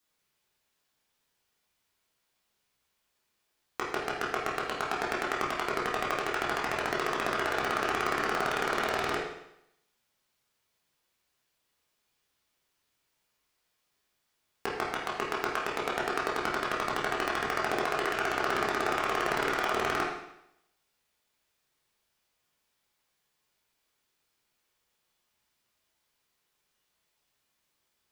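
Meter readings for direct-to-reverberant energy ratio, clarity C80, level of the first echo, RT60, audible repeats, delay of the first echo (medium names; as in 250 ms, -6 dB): -5.0 dB, 5.5 dB, no echo, 0.80 s, no echo, no echo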